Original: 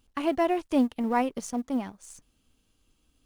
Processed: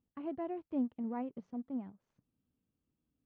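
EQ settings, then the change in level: band-pass filter 140 Hz, Q 1.2; distance through air 290 m; tilt EQ +3 dB/octave; +1.5 dB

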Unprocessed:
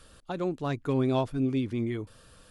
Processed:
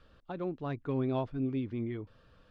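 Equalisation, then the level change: distance through air 250 m; -5.0 dB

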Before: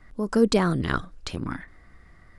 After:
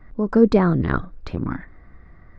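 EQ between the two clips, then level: tape spacing loss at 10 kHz 35 dB; peaking EQ 3 kHz -7.5 dB 0.2 oct; +6.5 dB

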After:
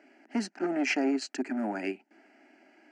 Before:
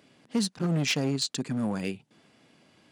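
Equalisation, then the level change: high-pass 280 Hz 24 dB/octave; distance through air 150 m; static phaser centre 730 Hz, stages 8; +6.5 dB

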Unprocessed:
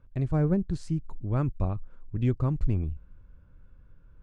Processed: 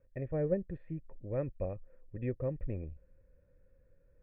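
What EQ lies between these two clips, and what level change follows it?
cascade formant filter e; +7.5 dB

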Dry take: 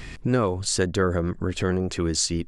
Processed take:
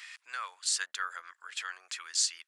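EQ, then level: high-pass 1.3 kHz 24 dB/octave; -3.5 dB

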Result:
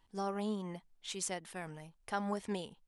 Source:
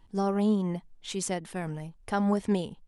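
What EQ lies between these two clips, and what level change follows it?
bass shelf 480 Hz -10.5 dB; -4.0 dB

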